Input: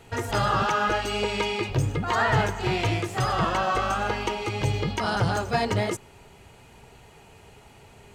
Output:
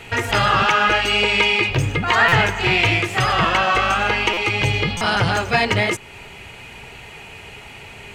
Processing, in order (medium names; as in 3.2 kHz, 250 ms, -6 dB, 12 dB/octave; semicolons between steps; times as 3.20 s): peaking EQ 2.4 kHz +12 dB 1.2 oct; in parallel at -0.5 dB: compression, threshold -34 dBFS, peak gain reduction 18 dB; on the sum: buffer glitch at 2.28/4.33/4.97 s, samples 256, times 6; trim +2.5 dB